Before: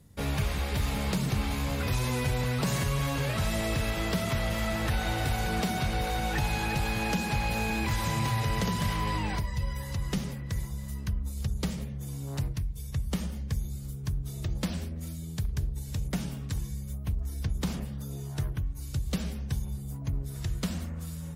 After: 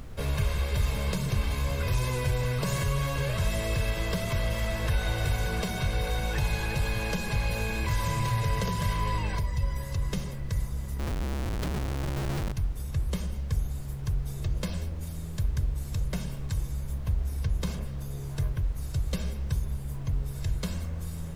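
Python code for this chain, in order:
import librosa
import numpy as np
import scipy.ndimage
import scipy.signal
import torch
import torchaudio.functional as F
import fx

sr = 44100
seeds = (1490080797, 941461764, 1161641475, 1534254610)

y = fx.low_shelf(x, sr, hz=220.0, db=2.5)
y = y + 0.57 * np.pad(y, (int(1.9 * sr / 1000.0), 0))[:len(y)]
y = fx.schmitt(y, sr, flips_db=-34.0, at=(10.99, 12.52))
y = fx.dmg_noise_colour(y, sr, seeds[0], colour='brown', level_db=-37.0)
y = y * librosa.db_to_amplitude(-2.5)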